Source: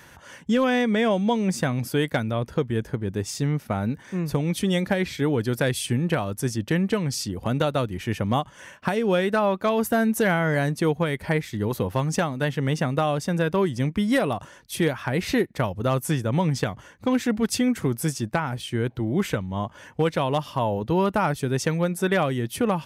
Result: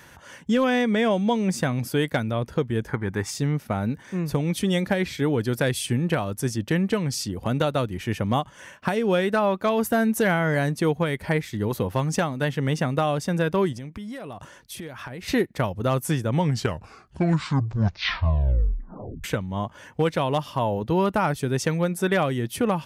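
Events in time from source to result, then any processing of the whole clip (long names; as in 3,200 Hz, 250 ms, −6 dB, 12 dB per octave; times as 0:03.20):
0:02.88–0:03.30: gain on a spectral selection 750–2,400 Hz +10 dB
0:13.72–0:15.28: downward compressor 8 to 1, threshold −33 dBFS
0:16.30: tape stop 2.94 s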